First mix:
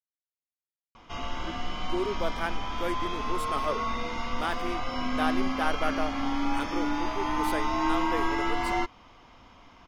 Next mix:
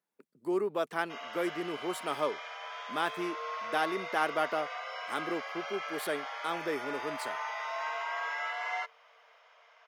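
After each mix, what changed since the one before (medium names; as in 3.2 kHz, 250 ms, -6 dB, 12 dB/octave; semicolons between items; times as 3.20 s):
speech: entry -1.45 s; background: add rippled Chebyshev high-pass 440 Hz, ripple 9 dB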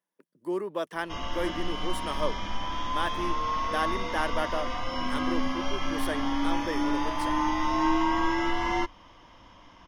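background: remove rippled Chebyshev high-pass 440 Hz, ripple 9 dB; master: add rippled EQ curve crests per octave 1.2, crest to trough 6 dB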